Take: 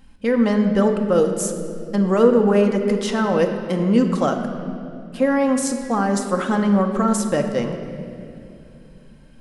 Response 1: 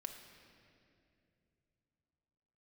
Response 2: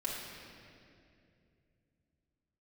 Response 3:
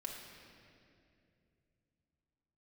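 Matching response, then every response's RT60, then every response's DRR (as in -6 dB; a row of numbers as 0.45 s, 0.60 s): 1; 2.6 s, 2.5 s, 2.6 s; 4.0 dB, -6.0 dB, -1.5 dB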